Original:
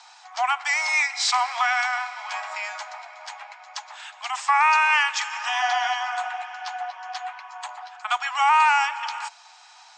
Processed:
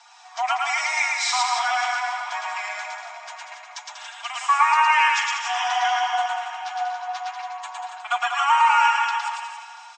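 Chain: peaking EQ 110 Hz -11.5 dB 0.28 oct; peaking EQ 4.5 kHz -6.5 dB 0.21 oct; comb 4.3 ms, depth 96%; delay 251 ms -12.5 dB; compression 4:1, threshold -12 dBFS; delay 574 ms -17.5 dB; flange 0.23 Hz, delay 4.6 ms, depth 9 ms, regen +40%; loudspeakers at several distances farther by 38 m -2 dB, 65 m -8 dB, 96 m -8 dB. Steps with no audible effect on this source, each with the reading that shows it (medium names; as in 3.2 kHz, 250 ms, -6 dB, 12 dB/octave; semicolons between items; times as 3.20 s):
peaking EQ 110 Hz: input has nothing below 600 Hz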